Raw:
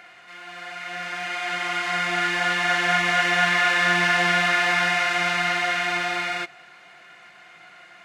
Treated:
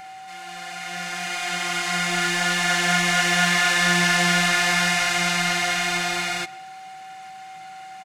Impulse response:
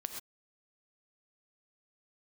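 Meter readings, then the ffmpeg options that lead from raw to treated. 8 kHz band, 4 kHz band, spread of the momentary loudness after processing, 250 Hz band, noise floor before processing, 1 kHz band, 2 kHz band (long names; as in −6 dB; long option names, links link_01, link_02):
+10.5 dB, +3.5 dB, 22 LU, +4.5 dB, −49 dBFS, −0.5 dB, −0.5 dB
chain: -filter_complex "[0:a]aeval=exprs='val(0)+0.0158*sin(2*PI*760*n/s)':channel_layout=same,bass=frequency=250:gain=10,treble=frequency=4000:gain=14,asplit=2[link_01][link_02];[link_02]adelay=130,highpass=300,lowpass=3400,asoftclip=type=hard:threshold=-15.5dB,volume=-18dB[link_03];[link_01][link_03]amix=inputs=2:normalize=0,volume=-1.5dB"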